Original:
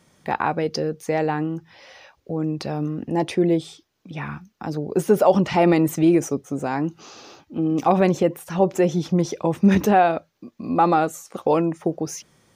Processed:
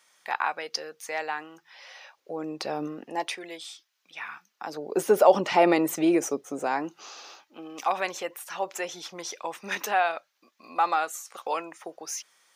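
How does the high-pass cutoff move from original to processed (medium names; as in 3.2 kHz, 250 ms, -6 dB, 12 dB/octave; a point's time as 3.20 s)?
1.52 s 1.1 kHz
2.85 s 390 Hz
3.42 s 1.4 kHz
4.24 s 1.4 kHz
4.98 s 420 Hz
6.59 s 420 Hz
7.73 s 1.1 kHz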